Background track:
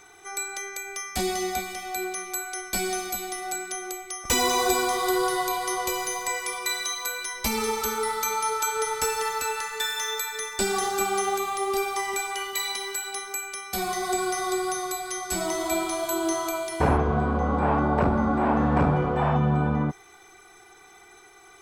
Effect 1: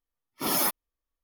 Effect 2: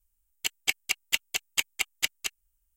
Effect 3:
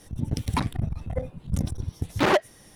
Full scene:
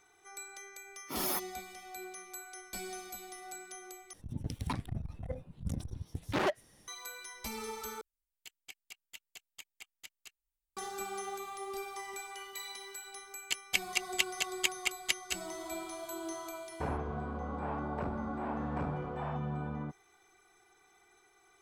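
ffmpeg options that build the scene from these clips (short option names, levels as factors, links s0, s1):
-filter_complex "[2:a]asplit=2[s0][s1];[0:a]volume=0.188[s2];[s0]acompressor=threshold=0.02:ratio=2:attack=12:release=44:knee=1:detection=rms[s3];[s1]lowpass=11000[s4];[s2]asplit=3[s5][s6][s7];[s5]atrim=end=4.134[s8];[3:a]atrim=end=2.75,asetpts=PTS-STARTPTS,volume=0.299[s9];[s6]atrim=start=6.876:end=8.014[s10];[s3]atrim=end=2.76,asetpts=PTS-STARTPTS,volume=0.141[s11];[s7]atrim=start=10.766[s12];[1:a]atrim=end=1.23,asetpts=PTS-STARTPTS,volume=0.355,afade=t=in:d=0.004:c=hsin,afade=t=out:st=1.226:d=0.004:c=hsin,adelay=690[s13];[s4]atrim=end=2.76,asetpts=PTS-STARTPTS,volume=0.631,afade=t=in:d=0.004:c=hsin,afade=t=out:st=2.756:d=0.004:c=hsin,adelay=13060[s14];[s8][s9]acrossfade=d=0.004:c1=hsin:c2=hsin[s15];[s15][s10]acrossfade=d=0.004:c1=hsin:c2=hsin[s16];[s16][s11]acrossfade=d=0.004:c1=hsin:c2=hsin[s17];[s17][s12]acrossfade=d=0.004:c1=hsin:c2=hsin[s18];[s18][s13][s14]amix=inputs=3:normalize=0"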